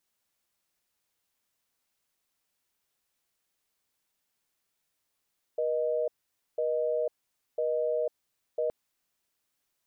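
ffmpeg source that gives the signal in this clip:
-f lavfi -i "aevalsrc='0.0376*(sin(2*PI*480*t)+sin(2*PI*620*t))*clip(min(mod(t,1),0.5-mod(t,1))/0.005,0,1)':d=3.12:s=44100"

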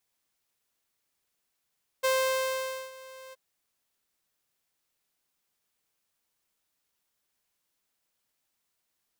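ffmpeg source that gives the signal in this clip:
-f lavfi -i "aevalsrc='0.1*(2*mod(524*t,1)-1)':d=1.324:s=44100,afade=t=in:d=0.018,afade=t=out:st=0.018:d=0.86:silence=0.0794,afade=t=out:st=1.3:d=0.024"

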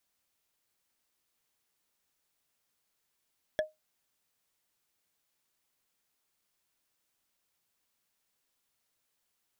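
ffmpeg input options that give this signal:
-f lavfi -i "aevalsrc='0.0794*pow(10,-3*t/0.18)*sin(2*PI*620*t)+0.0422*pow(10,-3*t/0.053)*sin(2*PI*1709.3*t)+0.0224*pow(10,-3*t/0.024)*sin(2*PI*3350.5*t)+0.0119*pow(10,-3*t/0.013)*sin(2*PI*5538.5*t)+0.00631*pow(10,-3*t/0.008)*sin(2*PI*8270.8*t)':d=0.45:s=44100"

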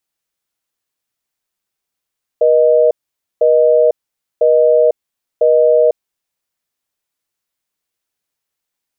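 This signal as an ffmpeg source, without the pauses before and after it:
-f lavfi -i "aevalsrc='0.316*(sin(2*PI*480*t)+sin(2*PI*620*t))*clip(min(mod(t,1),0.5-mod(t,1))/0.005,0,1)':d=3.75:s=44100"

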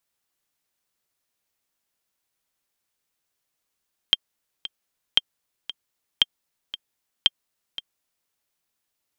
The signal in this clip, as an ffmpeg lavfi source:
-f lavfi -i "aevalsrc='pow(10,(-2.5-15.5*gte(mod(t,2*60/115),60/115))/20)*sin(2*PI*3180*mod(t,60/115))*exp(-6.91*mod(t,60/115)/0.03)':d=4.17:s=44100"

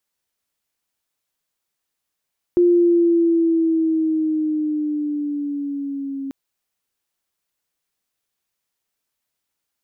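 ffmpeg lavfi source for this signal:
-f lavfi -i "aevalsrc='pow(10,(-10.5-14.5*t/3.74)/20)*sin(2*PI*352*3.74/(-4.5*log(2)/12)*(exp(-4.5*log(2)/12*t/3.74)-1))':d=3.74:s=44100"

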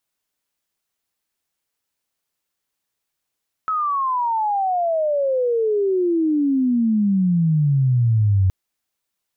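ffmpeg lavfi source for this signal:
-f lavfi -i "aevalsrc='pow(10,(-18.5+5.5*t/4.82)/20)*sin(2*PI*1300*4.82/log(92/1300)*(exp(log(92/1300)*t/4.82)-1))':d=4.82:s=44100"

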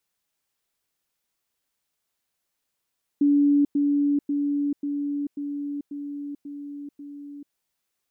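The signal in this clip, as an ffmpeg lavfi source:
-f lavfi -i "aevalsrc='pow(10,(-15.5-3*floor(t/0.54))/20)*sin(2*PI*287*t)*clip(min(mod(t,0.54),0.44-mod(t,0.54))/0.005,0,1)':d=4.32:s=44100"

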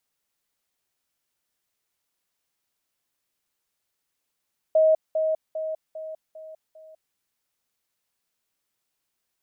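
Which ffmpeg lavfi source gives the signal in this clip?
-f lavfi -i "aevalsrc='pow(10,(-14.5-6*floor(t/0.4))/20)*sin(2*PI*632*t)*clip(min(mod(t,0.4),0.2-mod(t,0.4))/0.005,0,1)':d=2.4:s=44100"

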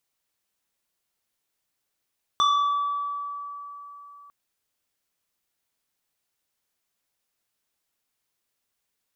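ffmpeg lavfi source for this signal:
-f lavfi -i "aevalsrc='0.15*pow(10,-3*t/3.78)*sin(2*PI*1150*t+1*pow(10,-3*t/1.45)*sin(2*PI*2.04*1150*t))':d=1.9:s=44100"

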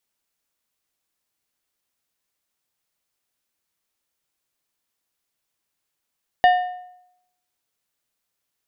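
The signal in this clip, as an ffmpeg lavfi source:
-f lavfi -i "aevalsrc='0.355*pow(10,-3*t/0.79)*sin(2*PI*725*t)+0.133*pow(10,-3*t/0.6)*sin(2*PI*1812.5*t)+0.0501*pow(10,-3*t/0.521)*sin(2*PI*2900*t)+0.0188*pow(10,-3*t/0.487)*sin(2*PI*3625*t)+0.00708*pow(10,-3*t/0.451)*sin(2*PI*4712.5*t)':d=1.55:s=44100"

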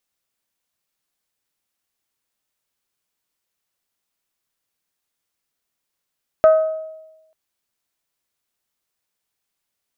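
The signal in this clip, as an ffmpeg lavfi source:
-f lavfi -i "aevalsrc='0.501*pow(10,-3*t/1.02)*sin(2*PI*634*t)+0.126*pow(10,-3*t/0.628)*sin(2*PI*1268*t)+0.0316*pow(10,-3*t/0.553)*sin(2*PI*1521.6*t)+0.00794*pow(10,-3*t/0.473)*sin(2*PI*1902*t)+0.002*pow(10,-3*t/0.387)*sin(2*PI*2536*t)':d=0.89:s=44100"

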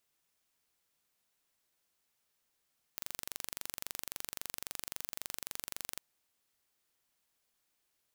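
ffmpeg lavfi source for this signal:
-f lavfi -i "aevalsrc='0.266*eq(mod(n,1861),0)':d=3.01:s=44100"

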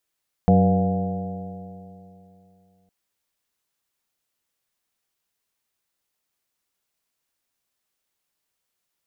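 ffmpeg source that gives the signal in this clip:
-f lavfi -i "aevalsrc='0.112*pow(10,-3*t/2.88)*sin(2*PI*92.28*t)+0.224*pow(10,-3*t/2.88)*sin(2*PI*185.63*t)+0.0224*pow(10,-3*t/2.88)*sin(2*PI*281.11*t)+0.0282*pow(10,-3*t/2.88)*sin(2*PI*379.72*t)+0.0891*pow(10,-3*t/2.88)*sin(2*PI*482.43*t)+0.0316*pow(10,-3*t/2.88)*sin(2*PI*590.12*t)+0.1*pow(10,-3*t/2.88)*sin(2*PI*703.61*t)+0.02*pow(10,-3*t/2.88)*sin(2*PI*823.64*t)':d=2.41:s=44100"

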